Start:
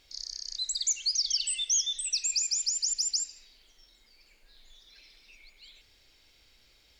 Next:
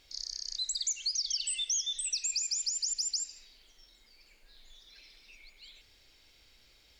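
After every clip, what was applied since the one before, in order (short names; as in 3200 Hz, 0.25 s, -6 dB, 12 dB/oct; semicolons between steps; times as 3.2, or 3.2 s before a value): compressor 2.5:1, threshold -31 dBFS, peak gain reduction 5.5 dB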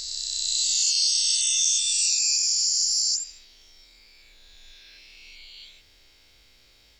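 spectral swells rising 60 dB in 2.53 s; gain +1.5 dB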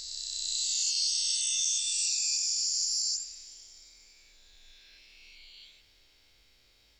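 plate-style reverb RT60 3.9 s, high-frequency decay 0.8×, DRR 12.5 dB; gain -7 dB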